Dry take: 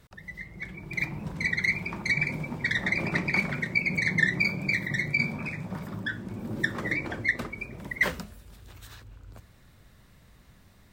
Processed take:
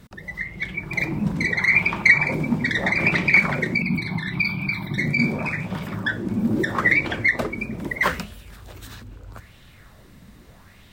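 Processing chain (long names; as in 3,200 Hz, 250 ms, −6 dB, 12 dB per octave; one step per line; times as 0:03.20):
0:01.51–0:02.34: dynamic equaliser 1,100 Hz, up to +7 dB, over −42 dBFS, Q 0.91
brickwall limiter −19 dBFS, peak gain reduction 8.5 dB
0:03.82–0:04.98: phaser with its sweep stopped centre 1,900 Hz, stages 6
auto-filter bell 0.78 Hz 210–3,200 Hz +11 dB
level +6.5 dB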